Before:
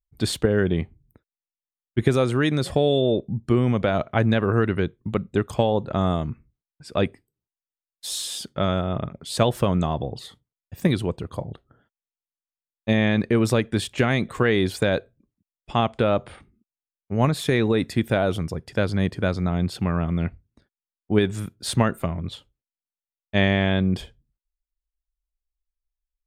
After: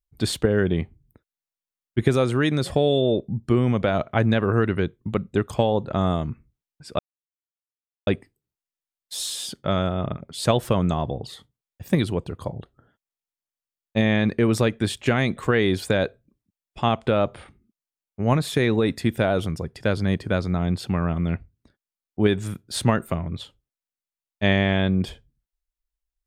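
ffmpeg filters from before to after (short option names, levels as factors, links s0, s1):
-filter_complex "[0:a]asplit=2[s0][s1];[s0]atrim=end=6.99,asetpts=PTS-STARTPTS,afade=t=out:st=6.986:d=0.004:c=hsin,apad=pad_dur=1.08[s2];[s1]atrim=start=6.99,asetpts=PTS-STARTPTS,afade=t=in:d=0.004:c=hsin[s3];[s2][s3]concat=n=2:v=0:a=1"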